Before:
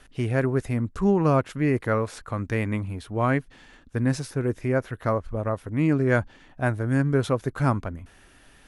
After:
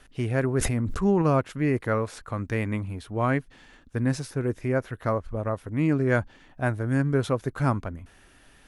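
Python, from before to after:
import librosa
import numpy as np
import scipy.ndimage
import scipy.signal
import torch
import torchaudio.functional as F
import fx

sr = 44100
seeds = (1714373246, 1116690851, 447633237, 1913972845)

y = fx.sustainer(x, sr, db_per_s=27.0, at=(0.48, 1.22))
y = y * 10.0 ** (-1.5 / 20.0)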